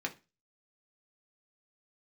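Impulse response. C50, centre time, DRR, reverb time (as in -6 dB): 17.0 dB, 8 ms, 1.5 dB, 0.30 s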